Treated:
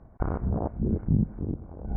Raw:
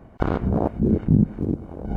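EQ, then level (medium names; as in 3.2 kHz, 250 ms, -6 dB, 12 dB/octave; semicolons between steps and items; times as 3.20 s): Gaussian low-pass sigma 6 samples; distance through air 150 m; peaking EQ 310 Hz -9 dB 3 oct; 0.0 dB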